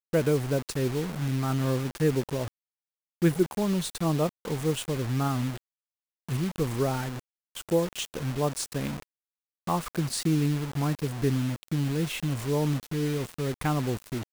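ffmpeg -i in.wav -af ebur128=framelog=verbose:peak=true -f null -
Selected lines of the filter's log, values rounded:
Integrated loudness:
  I:         -28.7 LUFS
  Threshold: -39.0 LUFS
Loudness range:
  LRA:         2.8 LU
  Threshold: -49.4 LUFS
  LRA low:   -31.1 LUFS
  LRA high:  -28.2 LUFS
True peak:
  Peak:      -12.0 dBFS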